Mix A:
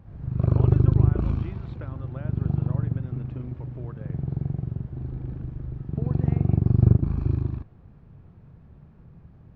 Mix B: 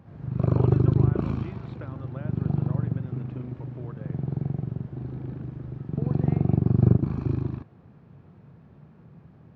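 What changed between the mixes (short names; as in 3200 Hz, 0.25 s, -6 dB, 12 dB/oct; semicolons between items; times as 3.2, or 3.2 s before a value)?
background +3.0 dB; master: add HPF 140 Hz 12 dB/oct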